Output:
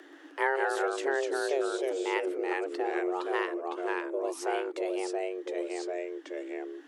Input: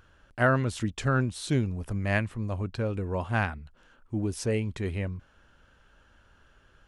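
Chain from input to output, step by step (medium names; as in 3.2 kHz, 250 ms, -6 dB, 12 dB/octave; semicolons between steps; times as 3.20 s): ever faster or slower copies 128 ms, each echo -2 st, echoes 2; frequency shift +270 Hz; three bands compressed up and down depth 40%; trim -4.5 dB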